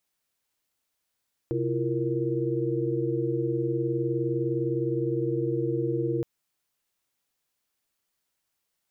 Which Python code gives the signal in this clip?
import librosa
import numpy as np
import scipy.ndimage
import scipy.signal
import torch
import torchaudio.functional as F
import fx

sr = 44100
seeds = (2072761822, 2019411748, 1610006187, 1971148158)

y = fx.chord(sr, length_s=4.72, notes=(48, 64, 65, 70), wave='sine', level_db=-30.0)